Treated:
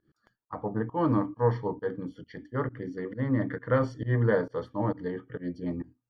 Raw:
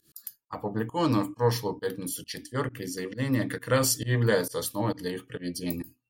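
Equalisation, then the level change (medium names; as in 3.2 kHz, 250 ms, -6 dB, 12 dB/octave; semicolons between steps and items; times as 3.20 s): Savitzky-Golay filter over 41 samples; distance through air 150 m; 0.0 dB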